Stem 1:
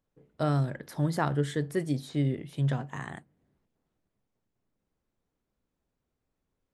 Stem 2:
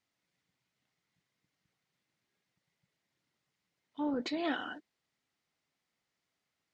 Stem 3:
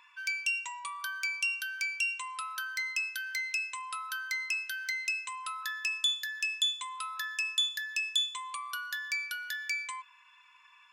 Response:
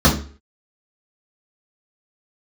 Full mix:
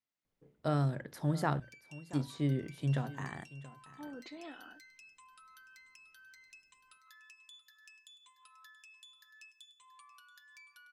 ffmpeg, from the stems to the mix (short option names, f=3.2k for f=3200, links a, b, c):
-filter_complex "[0:a]adelay=250,volume=-4dB,asplit=3[a][b][c];[a]atrim=end=1.6,asetpts=PTS-STARTPTS,afade=t=out:st=1.596:d=0.004:c=hsin[d];[b]atrim=start=1.6:end=2.13,asetpts=PTS-STARTPTS,volume=0[e];[c]atrim=start=2.13,asetpts=PTS-STARTPTS,afade=t=in:d=0.004:c=hsin[f];[d][e][f]concat=n=3:v=0:a=1,asplit=2[g][h];[h]volume=-17.5dB[i];[1:a]alimiter=level_in=2dB:limit=-24dB:level=0:latency=1:release=135,volume=-2dB,volume=-12.5dB[j];[2:a]bandreject=f=2.1k:w=17,acompressor=threshold=-41dB:ratio=3,flanger=delay=5.9:depth=1.4:regen=-28:speed=0.46:shape=sinusoidal,adelay=1450,volume=-13.5dB,asplit=2[k][l];[l]volume=-14.5dB[m];[i][m]amix=inputs=2:normalize=0,aecho=0:1:679:1[n];[g][j][k][n]amix=inputs=4:normalize=0,bandreject=f=60:t=h:w=6,bandreject=f=120:t=h:w=6"